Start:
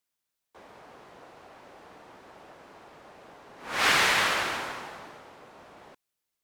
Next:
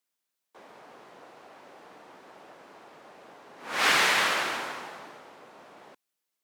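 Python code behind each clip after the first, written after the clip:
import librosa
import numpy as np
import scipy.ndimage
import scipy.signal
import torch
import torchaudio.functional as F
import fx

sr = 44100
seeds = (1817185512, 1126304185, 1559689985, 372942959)

y = scipy.signal.sosfilt(scipy.signal.butter(2, 170.0, 'highpass', fs=sr, output='sos'), x)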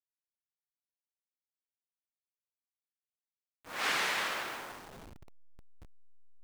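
y = fx.delta_hold(x, sr, step_db=-35.0)
y = y * librosa.db_to_amplitude(-9.0)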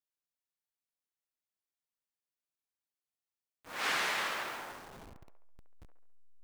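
y = fx.echo_wet_bandpass(x, sr, ms=69, feedback_pct=51, hz=900.0, wet_db=-7.0)
y = y * librosa.db_to_amplitude(-1.5)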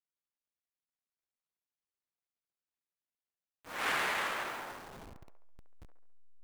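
y = scipy.ndimage.median_filter(x, 9, mode='constant')
y = y * librosa.db_to_amplitude(1.5)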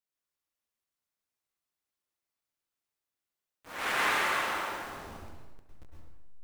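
y = fx.rev_plate(x, sr, seeds[0], rt60_s=1.0, hf_ratio=0.9, predelay_ms=95, drr_db=-3.5)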